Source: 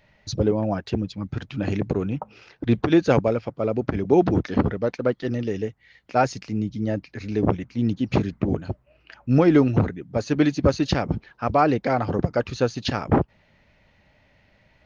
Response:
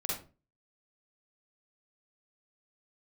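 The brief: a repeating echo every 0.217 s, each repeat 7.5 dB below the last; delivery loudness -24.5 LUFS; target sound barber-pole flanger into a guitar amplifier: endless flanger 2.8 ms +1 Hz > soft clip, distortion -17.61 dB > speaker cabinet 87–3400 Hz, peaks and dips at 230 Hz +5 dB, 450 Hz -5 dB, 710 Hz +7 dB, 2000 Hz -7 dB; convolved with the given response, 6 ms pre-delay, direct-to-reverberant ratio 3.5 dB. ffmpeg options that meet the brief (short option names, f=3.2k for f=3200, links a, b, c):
-filter_complex "[0:a]aecho=1:1:217|434|651|868|1085:0.422|0.177|0.0744|0.0312|0.0131,asplit=2[a][b];[1:a]atrim=start_sample=2205,adelay=6[c];[b][c]afir=irnorm=-1:irlink=0,volume=-7dB[d];[a][d]amix=inputs=2:normalize=0,asplit=2[e][f];[f]adelay=2.8,afreqshift=1[g];[e][g]amix=inputs=2:normalize=1,asoftclip=threshold=-11dB,highpass=87,equalizer=f=230:t=q:w=4:g=5,equalizer=f=450:t=q:w=4:g=-5,equalizer=f=710:t=q:w=4:g=7,equalizer=f=2k:t=q:w=4:g=-7,lowpass=f=3.4k:w=0.5412,lowpass=f=3.4k:w=1.3066,volume=-0.5dB"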